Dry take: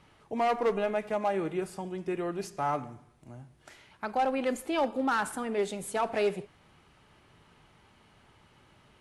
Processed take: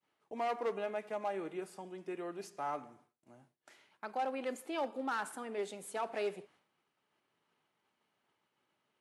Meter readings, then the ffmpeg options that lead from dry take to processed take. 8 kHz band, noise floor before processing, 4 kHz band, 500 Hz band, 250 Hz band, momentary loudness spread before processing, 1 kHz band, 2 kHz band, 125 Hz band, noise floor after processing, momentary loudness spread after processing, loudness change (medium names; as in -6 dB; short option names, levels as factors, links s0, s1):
-8.0 dB, -62 dBFS, -8.0 dB, -8.5 dB, -10.5 dB, 11 LU, -8.0 dB, -8.0 dB, -15.5 dB, -83 dBFS, 9 LU, -8.5 dB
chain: -af "highpass=250,agate=range=0.0224:threshold=0.002:ratio=3:detection=peak,volume=0.398"